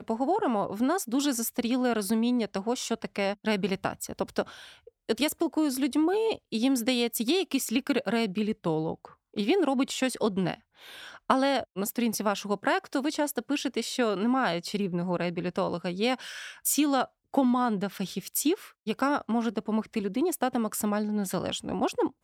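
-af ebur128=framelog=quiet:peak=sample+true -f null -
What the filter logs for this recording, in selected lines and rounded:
Integrated loudness:
  I:         -28.4 LUFS
  Threshold: -38.6 LUFS
Loudness range:
  LRA:         2.0 LU
  Threshold: -48.7 LUFS
  LRA low:   -29.5 LUFS
  LRA high:  -27.5 LUFS
Sample peak:
  Peak:       -8.1 dBFS
True peak:
  Peak:       -8.1 dBFS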